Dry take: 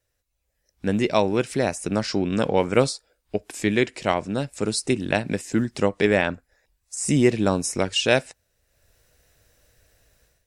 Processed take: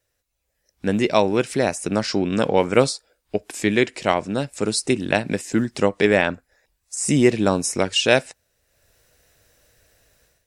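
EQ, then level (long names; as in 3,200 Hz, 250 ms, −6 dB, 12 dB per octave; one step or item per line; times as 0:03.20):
low-shelf EQ 110 Hz −6.5 dB
+3.0 dB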